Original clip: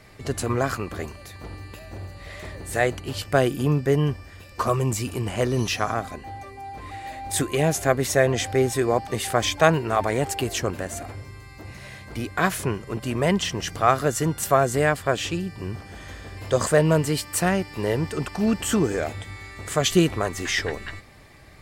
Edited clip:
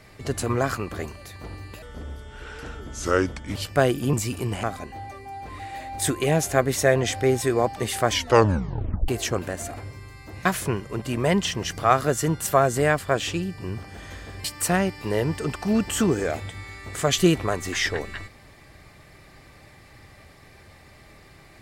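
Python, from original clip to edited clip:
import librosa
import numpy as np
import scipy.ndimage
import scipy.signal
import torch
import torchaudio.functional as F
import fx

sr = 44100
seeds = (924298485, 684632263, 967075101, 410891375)

y = fx.edit(x, sr, fx.speed_span(start_s=1.82, length_s=1.3, speed=0.75),
    fx.cut(start_s=3.7, length_s=1.18),
    fx.cut(start_s=5.38, length_s=0.57),
    fx.tape_stop(start_s=9.43, length_s=0.97),
    fx.cut(start_s=11.77, length_s=0.66),
    fx.cut(start_s=16.42, length_s=0.75), tone=tone)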